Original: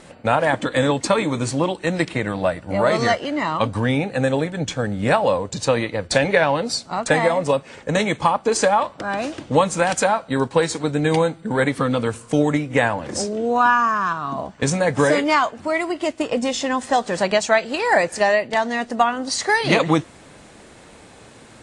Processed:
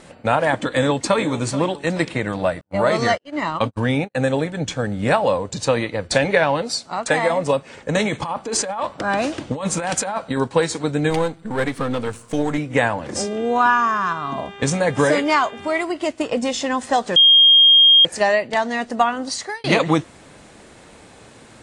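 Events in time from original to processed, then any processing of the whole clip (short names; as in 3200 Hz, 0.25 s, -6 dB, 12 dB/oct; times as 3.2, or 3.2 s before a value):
0.69–1.22 echo throw 0.43 s, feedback 40%, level -13.5 dB
2.61–4.15 gate -24 dBFS, range -45 dB
6.62–7.3 low shelf 260 Hz -7 dB
8.02–10.37 negative-ratio compressor -23 dBFS
11.1–12.58 half-wave gain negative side -7 dB
13.15–15.83 buzz 400 Hz, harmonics 9, -39 dBFS -3 dB/oct
17.16–18.05 bleep 3230 Hz -7.5 dBFS
19.23–19.64 fade out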